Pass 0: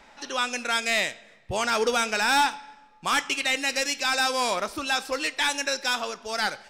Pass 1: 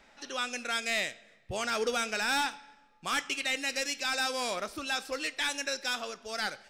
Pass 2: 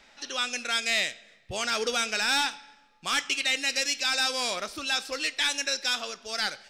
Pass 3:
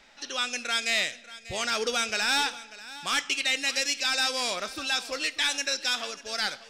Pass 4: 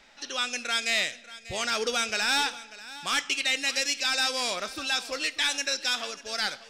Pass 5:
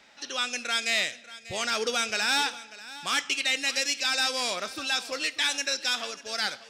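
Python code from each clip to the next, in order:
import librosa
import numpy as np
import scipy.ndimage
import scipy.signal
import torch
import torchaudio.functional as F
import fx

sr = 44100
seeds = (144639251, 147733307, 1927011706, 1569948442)

y1 = fx.peak_eq(x, sr, hz=940.0, db=-6.5, octaves=0.39)
y1 = F.gain(torch.from_numpy(y1), -6.0).numpy()
y2 = fx.peak_eq(y1, sr, hz=4400.0, db=7.5, octaves=2.2)
y3 = y2 + 10.0 ** (-17.0 / 20.0) * np.pad(y2, (int(591 * sr / 1000.0), 0))[:len(y2)]
y4 = y3
y5 = scipy.signal.sosfilt(scipy.signal.butter(2, 85.0, 'highpass', fs=sr, output='sos'), y4)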